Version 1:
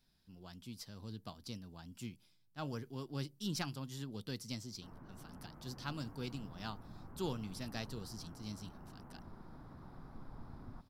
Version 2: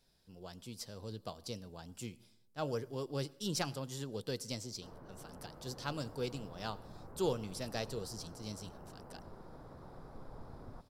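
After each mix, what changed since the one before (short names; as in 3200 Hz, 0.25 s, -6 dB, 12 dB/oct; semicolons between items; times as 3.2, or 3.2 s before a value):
speech: send on; master: add graphic EQ 250/500/8000 Hz -4/+11/+6 dB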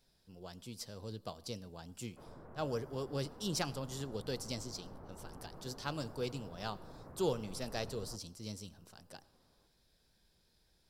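background: entry -2.65 s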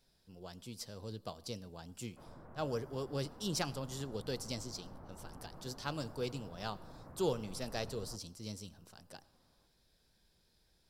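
background: add bell 420 Hz -5.5 dB 0.44 oct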